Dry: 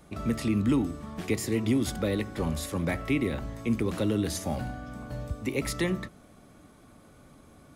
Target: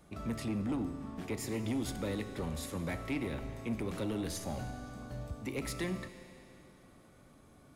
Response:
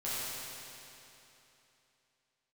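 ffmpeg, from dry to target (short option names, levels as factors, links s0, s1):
-filter_complex "[0:a]asoftclip=type=tanh:threshold=0.0708,asplit=2[s0][s1];[1:a]atrim=start_sample=2205[s2];[s1][s2]afir=irnorm=-1:irlink=0,volume=0.188[s3];[s0][s3]amix=inputs=2:normalize=0,asplit=3[s4][s5][s6];[s4]afade=t=out:st=0.44:d=0.02[s7];[s5]adynamicequalizer=threshold=0.00355:dfrequency=2100:dqfactor=0.7:tfrequency=2100:tqfactor=0.7:attack=5:release=100:ratio=0.375:range=3:mode=cutabove:tftype=highshelf,afade=t=in:st=0.44:d=0.02,afade=t=out:st=1.39:d=0.02[s8];[s6]afade=t=in:st=1.39:d=0.02[s9];[s7][s8][s9]amix=inputs=3:normalize=0,volume=0.447"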